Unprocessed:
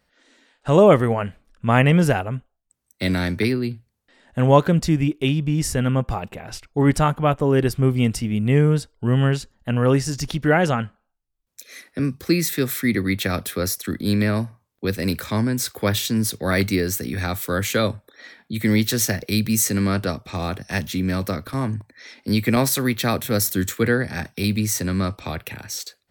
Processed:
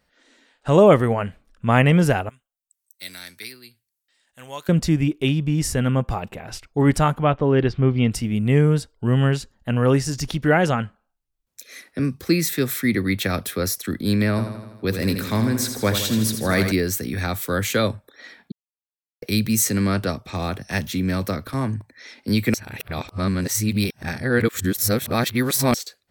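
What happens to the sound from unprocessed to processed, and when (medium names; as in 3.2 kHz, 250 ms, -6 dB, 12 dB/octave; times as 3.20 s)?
2.29–4.69 s: pre-emphasis filter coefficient 0.97
7.23–8.12 s: low-pass 4.5 kHz 24 dB/octave
14.30–16.72 s: feedback delay 82 ms, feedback 60%, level -8 dB
18.52–19.22 s: mute
22.54–25.74 s: reverse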